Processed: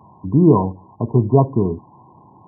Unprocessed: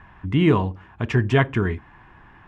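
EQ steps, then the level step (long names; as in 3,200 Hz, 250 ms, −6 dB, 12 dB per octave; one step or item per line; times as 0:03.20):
high-pass filter 110 Hz 24 dB per octave
linear-phase brick-wall low-pass 1,100 Hz
+5.5 dB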